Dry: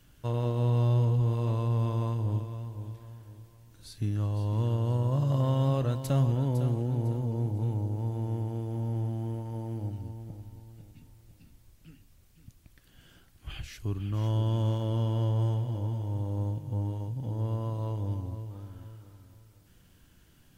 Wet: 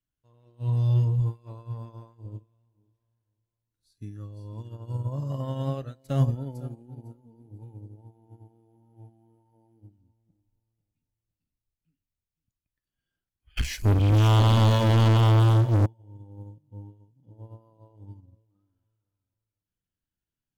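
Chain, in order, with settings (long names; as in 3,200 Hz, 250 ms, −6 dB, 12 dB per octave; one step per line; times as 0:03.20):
noise reduction from a noise print of the clip's start 11 dB
0:13.57–0:15.86: leveller curve on the samples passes 5
expander for the loud parts 2.5 to 1, over −39 dBFS
level +5.5 dB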